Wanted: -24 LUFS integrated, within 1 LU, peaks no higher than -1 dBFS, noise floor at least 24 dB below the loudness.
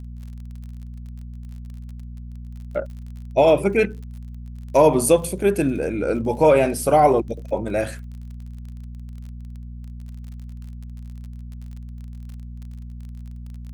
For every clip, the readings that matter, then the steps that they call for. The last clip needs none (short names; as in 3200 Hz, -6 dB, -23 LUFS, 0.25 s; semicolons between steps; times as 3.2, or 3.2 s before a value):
ticks 34/s; hum 60 Hz; harmonics up to 240 Hz; hum level -32 dBFS; loudness -19.5 LUFS; peak -3.5 dBFS; loudness target -24.0 LUFS
-> de-click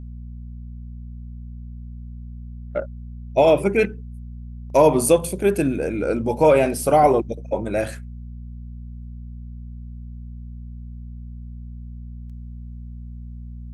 ticks 0.073/s; hum 60 Hz; harmonics up to 240 Hz; hum level -33 dBFS
-> de-hum 60 Hz, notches 4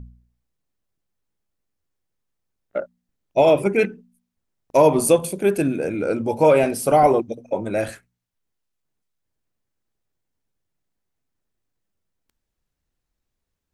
hum none; loudness -19.0 LUFS; peak -3.0 dBFS; loudness target -24.0 LUFS
-> gain -5 dB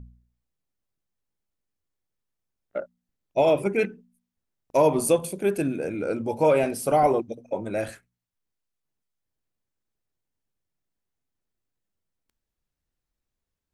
loudness -24.0 LUFS; peak -8.0 dBFS; noise floor -85 dBFS